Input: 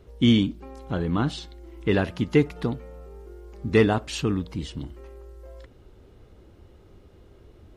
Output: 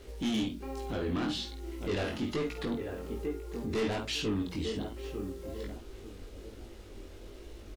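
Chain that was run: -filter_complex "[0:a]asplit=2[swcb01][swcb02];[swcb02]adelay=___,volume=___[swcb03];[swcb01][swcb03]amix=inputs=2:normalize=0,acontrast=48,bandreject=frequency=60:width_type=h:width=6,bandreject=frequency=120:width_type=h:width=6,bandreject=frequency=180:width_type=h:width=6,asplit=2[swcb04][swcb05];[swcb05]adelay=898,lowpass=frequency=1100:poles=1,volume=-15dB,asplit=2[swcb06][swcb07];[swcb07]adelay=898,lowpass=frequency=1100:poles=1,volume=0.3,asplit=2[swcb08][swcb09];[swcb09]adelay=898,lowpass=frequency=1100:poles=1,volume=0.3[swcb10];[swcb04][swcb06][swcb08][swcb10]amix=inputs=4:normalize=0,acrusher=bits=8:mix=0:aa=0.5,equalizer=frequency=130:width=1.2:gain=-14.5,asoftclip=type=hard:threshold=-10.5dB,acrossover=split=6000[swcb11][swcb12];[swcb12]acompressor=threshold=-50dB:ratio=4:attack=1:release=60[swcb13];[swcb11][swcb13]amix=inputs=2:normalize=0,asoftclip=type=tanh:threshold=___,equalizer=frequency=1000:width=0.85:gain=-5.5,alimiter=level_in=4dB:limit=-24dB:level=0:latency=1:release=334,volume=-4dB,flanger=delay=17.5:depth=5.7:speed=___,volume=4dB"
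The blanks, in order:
50, -9dB, -22dB, 1.2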